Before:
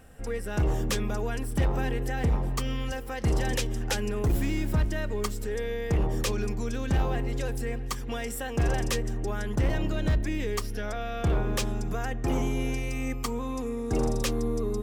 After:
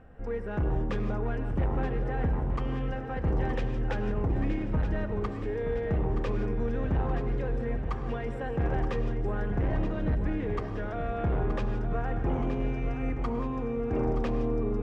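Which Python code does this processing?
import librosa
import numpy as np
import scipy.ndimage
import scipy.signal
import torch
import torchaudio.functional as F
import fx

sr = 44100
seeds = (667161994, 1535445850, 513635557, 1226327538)

p1 = scipy.signal.sosfilt(scipy.signal.butter(2, 1600.0, 'lowpass', fs=sr, output='sos'), x)
p2 = 10.0 ** (-22.5 / 20.0) * np.tanh(p1 / 10.0 ** (-22.5 / 20.0))
p3 = p2 + fx.echo_feedback(p2, sr, ms=924, feedback_pct=58, wet_db=-9.0, dry=0)
y = fx.rev_gated(p3, sr, seeds[0], gate_ms=190, shape='rising', drr_db=9.5)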